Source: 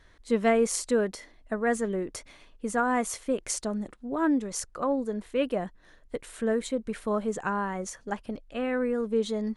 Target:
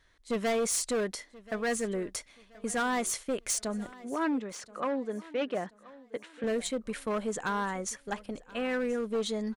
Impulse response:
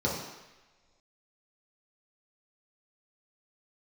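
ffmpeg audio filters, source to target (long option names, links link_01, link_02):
-filter_complex "[0:a]agate=range=-7dB:threshold=-42dB:ratio=16:detection=peak,tiltshelf=frequency=1200:gain=-3.5,volume=25.5dB,asoftclip=hard,volume=-25.5dB,asettb=1/sr,asplit=3[link_01][link_02][link_03];[link_01]atrim=end=3.924[link_04];[link_02]atrim=start=3.92:end=6.44,asetpts=PTS-STARTPTS,afade=type=in:duration=0.004:curve=qsin,afade=type=out:start_time=2.516:duration=0.004:curve=qsin,highpass=180,lowpass=3300[link_05];[link_03]atrim=start=6.436[link_06];[link_04][link_05]acrossfade=duration=0.004:curve1=hsin:curve2=qsin[link_07];[link_07][link_06]acrossfade=duration=0.004:curve1=qsin:curve2=hsin,aecho=1:1:1030|2060|3090:0.0944|0.0349|0.0129"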